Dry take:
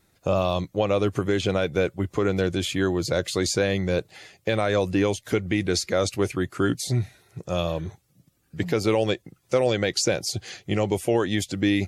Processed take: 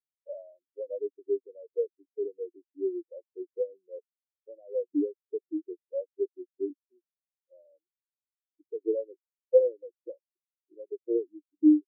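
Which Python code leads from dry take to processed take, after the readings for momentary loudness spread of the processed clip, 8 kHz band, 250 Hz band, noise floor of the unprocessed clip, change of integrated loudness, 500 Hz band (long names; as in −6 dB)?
21 LU, below −40 dB, −5.0 dB, −67 dBFS, −7.0 dB, −6.5 dB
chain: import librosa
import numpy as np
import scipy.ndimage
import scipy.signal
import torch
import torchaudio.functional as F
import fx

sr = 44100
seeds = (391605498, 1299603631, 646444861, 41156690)

y = fx.bit_reversed(x, sr, seeds[0], block=16)
y = scipy.signal.sosfilt(scipy.signal.butter(4, 300.0, 'highpass', fs=sr, output='sos'), y)
y = fx.tilt_shelf(y, sr, db=7.0, hz=750.0)
y = fx.spectral_expand(y, sr, expansion=4.0)
y = y * 10.0 ** (-2.0 / 20.0)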